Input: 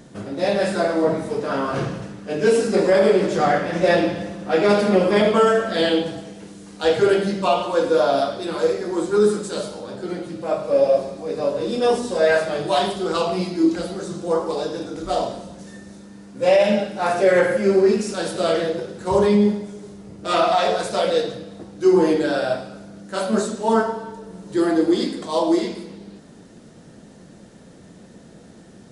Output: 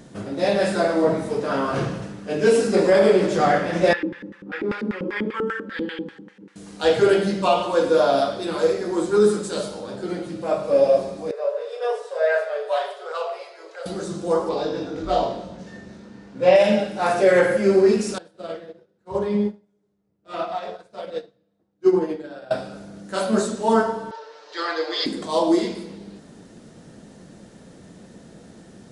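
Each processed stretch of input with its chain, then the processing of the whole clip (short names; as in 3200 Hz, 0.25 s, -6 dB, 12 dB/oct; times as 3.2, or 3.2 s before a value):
3.93–6.56 LFO band-pass square 5.1 Hz 270–1800 Hz + Butterworth band-stop 670 Hz, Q 3
11.31–13.86 rippled Chebyshev high-pass 420 Hz, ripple 6 dB + high shelf 2700 Hz -10.5 dB
14.49–16.56 LPF 4300 Hz + flutter echo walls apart 3.8 m, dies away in 0.21 s
18.18–22.51 HPF 50 Hz + high shelf 4800 Hz -11.5 dB + upward expander 2.5:1, over -32 dBFS
24.11–25.06 elliptic band-pass 490–5000 Hz, stop band 50 dB + tilt shelf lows -6 dB, about 720 Hz + comb 6.7 ms, depth 67%
whole clip: dry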